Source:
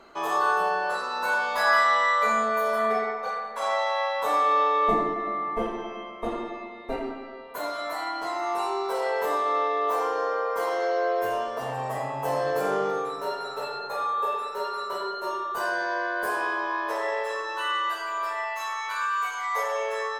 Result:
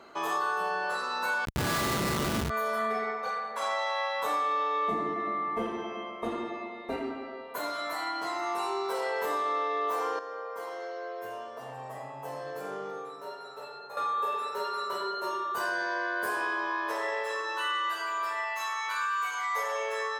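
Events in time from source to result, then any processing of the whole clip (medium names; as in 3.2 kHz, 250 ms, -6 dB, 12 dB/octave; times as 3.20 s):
1.45–2.50 s: Schmitt trigger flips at -19.5 dBFS
10.19–13.97 s: gain -10.5 dB
whole clip: high-pass 79 Hz; dynamic bell 650 Hz, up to -5 dB, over -37 dBFS, Q 1.1; compression, threshold -26 dBFS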